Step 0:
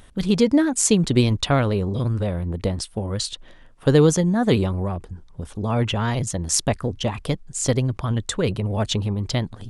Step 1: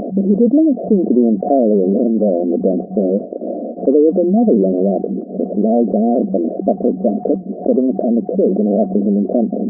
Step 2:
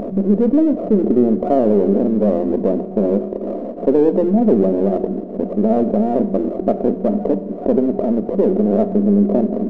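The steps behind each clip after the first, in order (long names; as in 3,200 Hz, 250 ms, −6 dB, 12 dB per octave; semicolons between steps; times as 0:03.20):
brick-wall band-pass 190–730 Hz; envelope flattener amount 70%; level +4 dB
gain on one half-wave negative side −3 dB; on a send at −10.5 dB: convolution reverb RT60 1.2 s, pre-delay 3 ms; on the sum: level −1 dB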